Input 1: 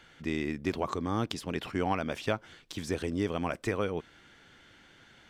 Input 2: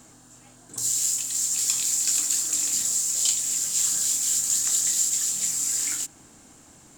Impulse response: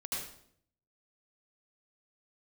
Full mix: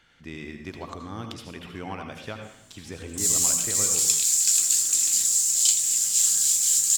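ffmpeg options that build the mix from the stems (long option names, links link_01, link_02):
-filter_complex "[0:a]volume=-6dB,asplit=2[link_01][link_02];[link_02]volume=-3dB[link_03];[1:a]adynamicequalizer=threshold=0.00708:dfrequency=2200:dqfactor=0.7:tfrequency=2200:tqfactor=0.7:attack=5:release=100:ratio=0.375:range=3:mode=boostabove:tftype=highshelf,adelay=2400,volume=-3dB[link_04];[2:a]atrim=start_sample=2205[link_05];[link_03][link_05]afir=irnorm=-1:irlink=0[link_06];[link_01][link_04][link_06]amix=inputs=3:normalize=0,equalizer=frequency=430:width_type=o:width=2.7:gain=-4.5"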